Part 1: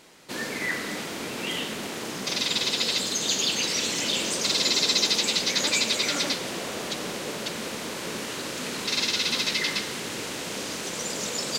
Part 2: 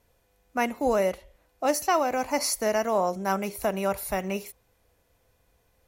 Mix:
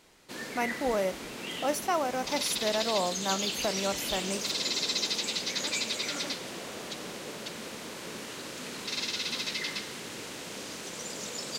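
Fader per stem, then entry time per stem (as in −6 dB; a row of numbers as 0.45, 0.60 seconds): −7.5, −5.0 decibels; 0.00, 0.00 seconds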